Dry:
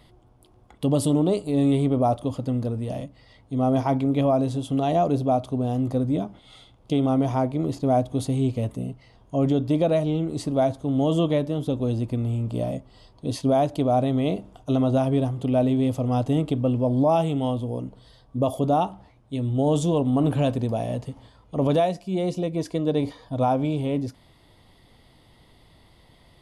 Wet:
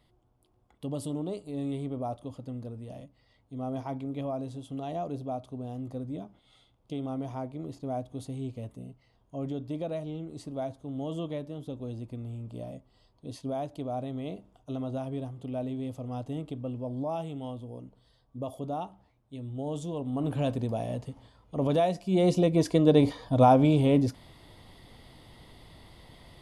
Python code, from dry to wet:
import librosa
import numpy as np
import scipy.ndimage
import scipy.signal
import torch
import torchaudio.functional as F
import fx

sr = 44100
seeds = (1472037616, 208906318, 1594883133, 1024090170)

y = fx.gain(x, sr, db=fx.line((19.93, -13.0), (20.51, -5.5), (21.71, -5.5), (22.3, 3.0)))